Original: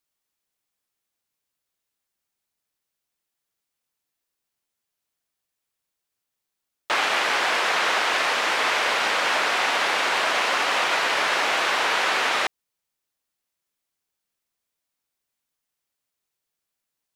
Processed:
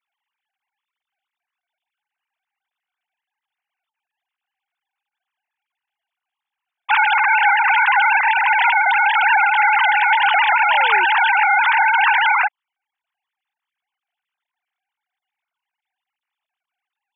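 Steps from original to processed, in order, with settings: sine-wave speech; painted sound fall, 10.01–11.05, 340–2700 Hz -40 dBFS; gain +7.5 dB

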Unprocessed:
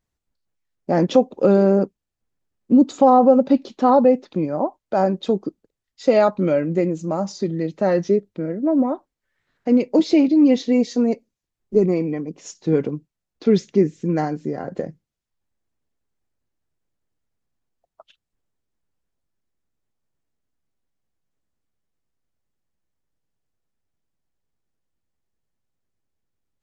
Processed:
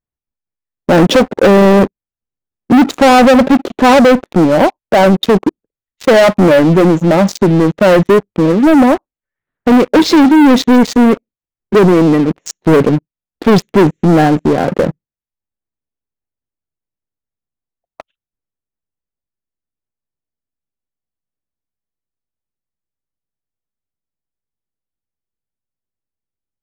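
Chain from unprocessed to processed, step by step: Wiener smoothing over 9 samples; sample leveller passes 5

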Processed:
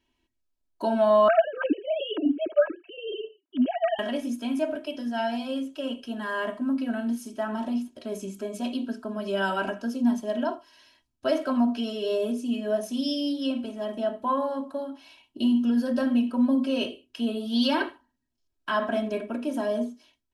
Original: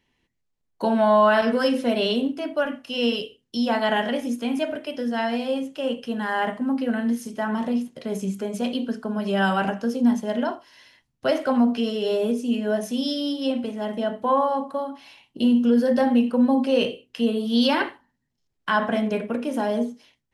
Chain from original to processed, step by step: 1.28–3.99 sine-wave speech; notch 2000 Hz, Q 6.5; comb 3.1 ms, depth 87%; gain -6 dB

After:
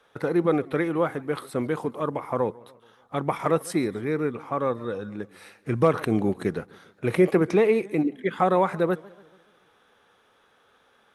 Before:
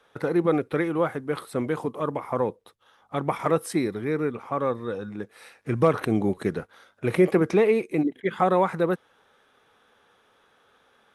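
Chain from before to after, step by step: warbling echo 0.142 s, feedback 52%, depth 192 cents, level -23 dB

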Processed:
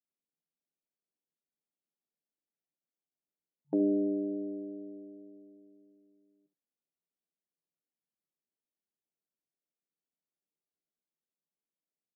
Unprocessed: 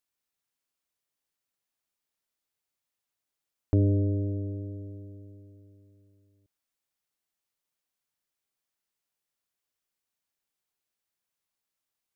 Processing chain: early reflections 13 ms -9.5 dB, 70 ms -12 dB; FFT band-pass 150–890 Hz; low-pass opened by the level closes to 460 Hz, open at -34.5 dBFS; gain -1.5 dB

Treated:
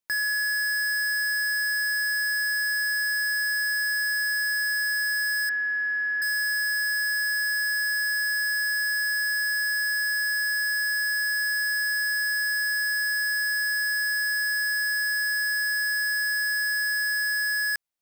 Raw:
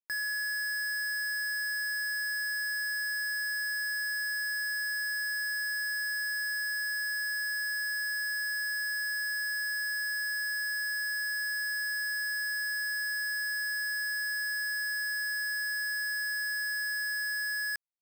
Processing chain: 5.49–6.22 LPF 2600 Hz 24 dB/oct; gain +7 dB

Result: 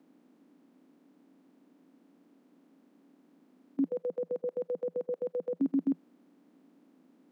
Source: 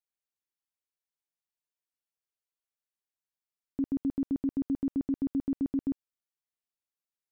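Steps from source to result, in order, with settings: per-bin compression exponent 0.4; 3.88–5.6 ring modulator 220 Hz; Chebyshev high-pass 170 Hz, order 6; gain +1.5 dB

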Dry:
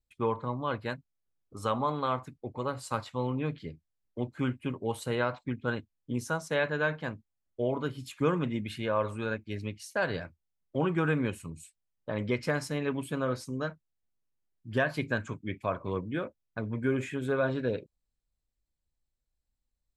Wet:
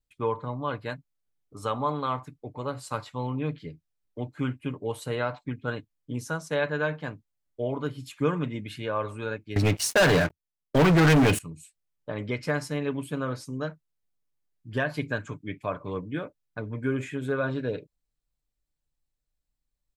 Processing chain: comb 6.8 ms, depth 37%; 9.56–11.39 sample leveller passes 5

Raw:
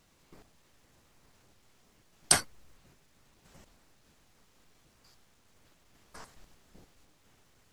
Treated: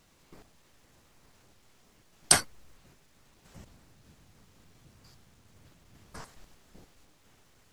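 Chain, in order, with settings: 3.56–6.21 bell 110 Hz +10 dB 2.3 oct; gain +2.5 dB

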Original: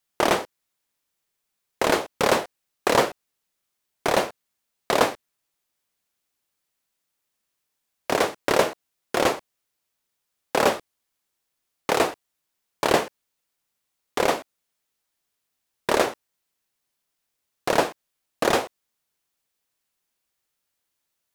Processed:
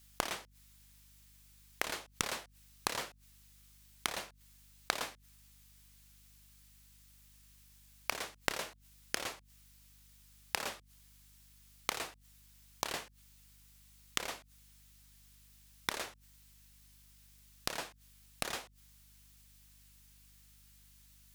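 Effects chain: flipped gate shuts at -24 dBFS, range -27 dB; in parallel at +1 dB: negative-ratio compressor -43 dBFS; on the sum: hum 50 Hz, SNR 19 dB; passive tone stack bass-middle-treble 5-5-5; gain +12 dB

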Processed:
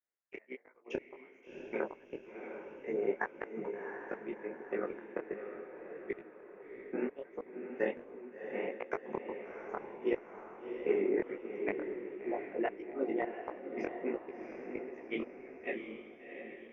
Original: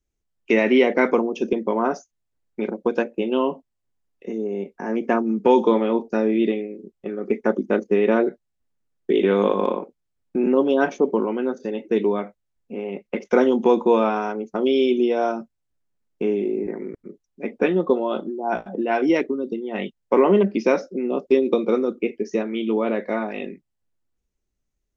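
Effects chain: HPF 470 Hz 12 dB/oct; resonant high shelf 2700 Hz -12 dB, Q 3; vocal rider within 5 dB 0.5 s; flipped gate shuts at -16 dBFS, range -40 dB; AM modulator 61 Hz, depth 35%; granular stretch 0.67×, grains 92 ms; diffused feedback echo 0.708 s, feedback 48%, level -6.5 dB; detuned doubles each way 51 cents; gain +3 dB

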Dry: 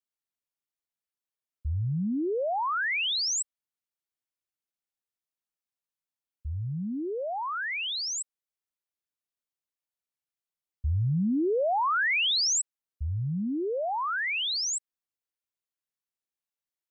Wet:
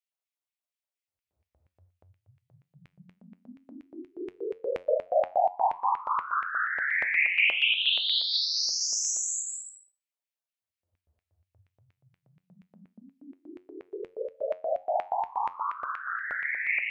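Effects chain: Paulstretch 4.4×, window 0.25 s, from 10.48; LFO high-pass square 4.2 Hz 620–2300 Hz; resonator 90 Hz, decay 0.31 s, harmonics all, mix 50%

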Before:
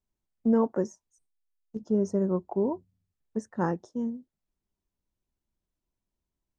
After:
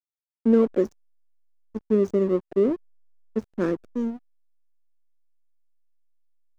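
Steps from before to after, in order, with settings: fixed phaser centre 350 Hz, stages 4; backlash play -37 dBFS; gain +8 dB

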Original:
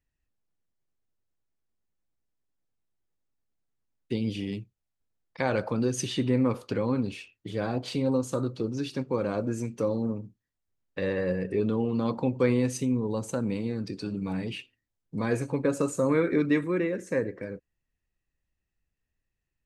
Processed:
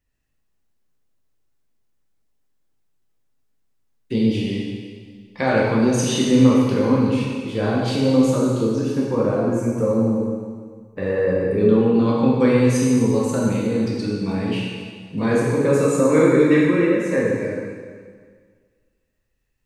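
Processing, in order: 8.79–11.58 bell 3600 Hz -13 dB 1.4 oct; reverb RT60 1.7 s, pre-delay 6 ms, DRR -5 dB; gain +3.5 dB

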